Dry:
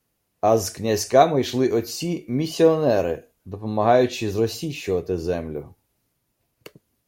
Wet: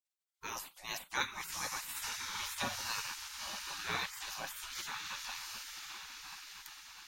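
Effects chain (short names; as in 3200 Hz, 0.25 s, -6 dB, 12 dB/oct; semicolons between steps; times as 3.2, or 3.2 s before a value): diffused feedback echo 1.025 s, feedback 51%, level -6 dB; spectral gate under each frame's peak -25 dB weak; gain -2.5 dB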